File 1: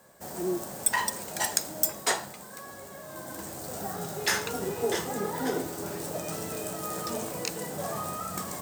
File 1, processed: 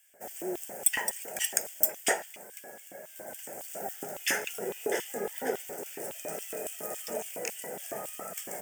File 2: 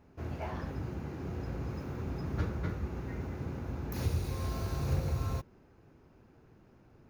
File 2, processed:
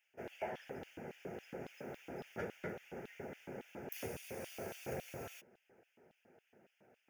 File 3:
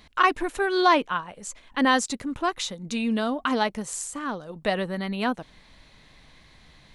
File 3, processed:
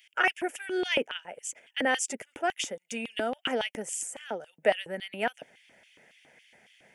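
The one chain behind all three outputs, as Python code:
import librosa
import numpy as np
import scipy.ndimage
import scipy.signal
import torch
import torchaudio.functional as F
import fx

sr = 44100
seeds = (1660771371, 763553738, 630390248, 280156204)

y = fx.hpss(x, sr, part='percussive', gain_db=5)
y = fx.fixed_phaser(y, sr, hz=1100.0, stages=6)
y = fx.filter_lfo_highpass(y, sr, shape='square', hz=3.6, low_hz=290.0, high_hz=3100.0, q=3.3)
y = y * librosa.db_to_amplitude(-3.0)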